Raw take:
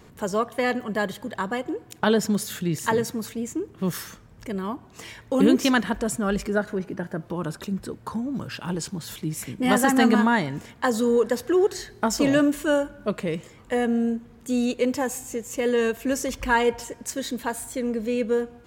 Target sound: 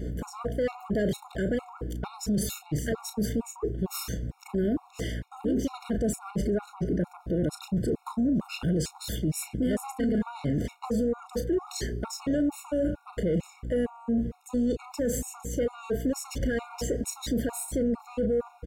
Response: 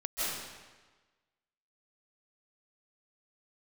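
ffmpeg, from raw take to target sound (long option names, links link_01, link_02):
-filter_complex "[0:a]lowshelf=frequency=670:width_type=q:width=1.5:gain=8.5,areverse,acompressor=threshold=-20dB:ratio=8,areverse,aeval=exprs='val(0)+0.0126*(sin(2*PI*60*n/s)+sin(2*PI*2*60*n/s)/2+sin(2*PI*3*60*n/s)/3+sin(2*PI*4*60*n/s)/4+sin(2*PI*5*60*n/s)/5)':channel_layout=same,asplit=2[link_01][link_02];[link_02]adelay=34,volume=-11dB[link_03];[link_01][link_03]amix=inputs=2:normalize=0,alimiter=limit=-21dB:level=0:latency=1:release=18,asoftclip=type=tanh:threshold=-23.5dB,afftfilt=real='re*gt(sin(2*PI*2.2*pts/sr)*(1-2*mod(floor(b*sr/1024/720),2)),0)':imag='im*gt(sin(2*PI*2.2*pts/sr)*(1-2*mod(floor(b*sr/1024/720),2)),0)':win_size=1024:overlap=0.75,volume=4dB"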